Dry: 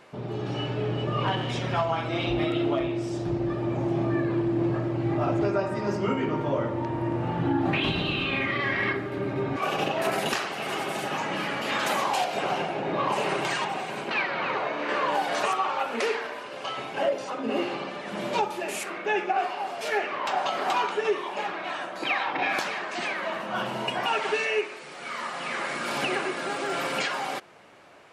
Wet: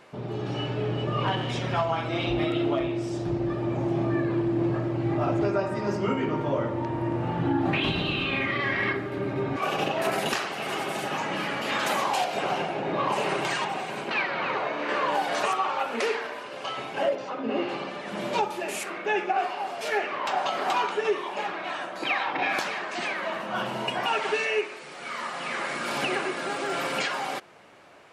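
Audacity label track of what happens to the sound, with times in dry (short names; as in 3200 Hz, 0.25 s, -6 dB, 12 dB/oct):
17.150000	17.690000	air absorption 130 m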